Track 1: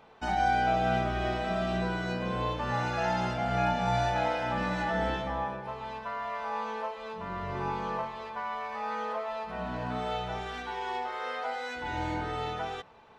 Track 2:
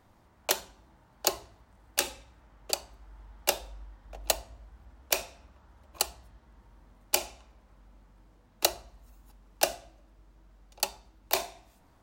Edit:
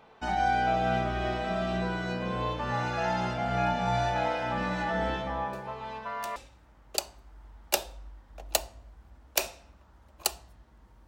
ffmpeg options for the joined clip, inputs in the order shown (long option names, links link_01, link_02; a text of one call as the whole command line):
ffmpeg -i cue0.wav -i cue1.wav -filter_complex "[1:a]asplit=2[link_01][link_02];[0:a]apad=whole_dur=11.07,atrim=end=11.07,atrim=end=6.362[link_03];[link_02]atrim=start=2.108:end=6.82[link_04];[link_01]atrim=start=1.28:end=2.11,asetpts=PTS-STARTPTS,volume=-17.5dB,afade=type=in:duration=0.004:curve=hsin,afade=type=out:start_time=0.826:duration=0.004:curve=hsin,adelay=243873S[link_05];[link_03][link_04]acrossfade=duration=0.004:curve1=hsin:curve2=hsin[link_06];[link_06][link_05]amix=inputs=2:normalize=0" out.wav